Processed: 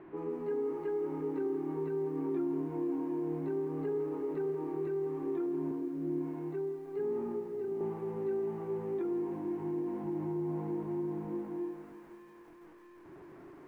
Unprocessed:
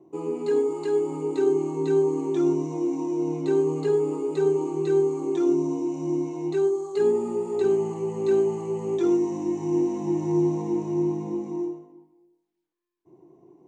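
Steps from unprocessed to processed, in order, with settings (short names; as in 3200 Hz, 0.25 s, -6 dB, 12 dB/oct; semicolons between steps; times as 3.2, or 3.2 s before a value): zero-crossing step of -39.5 dBFS; LPF 2100 Hz 24 dB/oct; limiter -19.5 dBFS, peak gain reduction 7.5 dB; 5.71–7.81 rotary speaker horn 1.2 Hz; reverb RT60 3.5 s, pre-delay 4 ms, DRR 20 dB; lo-fi delay 0.167 s, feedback 80%, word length 9-bit, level -14 dB; gain -8.5 dB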